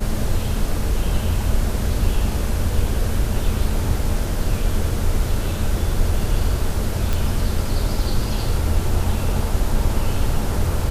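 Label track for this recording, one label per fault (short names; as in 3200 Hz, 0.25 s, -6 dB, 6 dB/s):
7.130000	7.130000	pop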